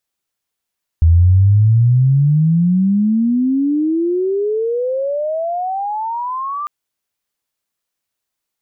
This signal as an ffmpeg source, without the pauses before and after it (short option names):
-f lavfi -i "aevalsrc='pow(10,(-6-14*t/5.65)/20)*sin(2*PI*80*5.65/log(1200/80)*(exp(log(1200/80)*t/5.65)-1))':d=5.65:s=44100"